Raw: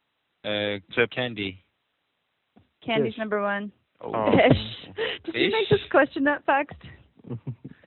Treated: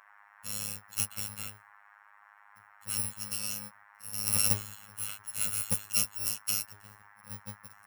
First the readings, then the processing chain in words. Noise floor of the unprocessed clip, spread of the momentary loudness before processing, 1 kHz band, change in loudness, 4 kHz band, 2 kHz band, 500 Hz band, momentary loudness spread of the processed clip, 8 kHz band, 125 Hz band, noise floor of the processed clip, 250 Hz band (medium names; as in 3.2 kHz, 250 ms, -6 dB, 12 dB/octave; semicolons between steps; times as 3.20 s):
-76 dBFS, 17 LU, -21.0 dB, -6.5 dB, -7.0 dB, -17.5 dB, -29.5 dB, 17 LU, no reading, -11.5 dB, -60 dBFS, -21.0 dB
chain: bit-reversed sample order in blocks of 128 samples; band noise 790–1900 Hz -49 dBFS; robot voice 103 Hz; trim -7.5 dB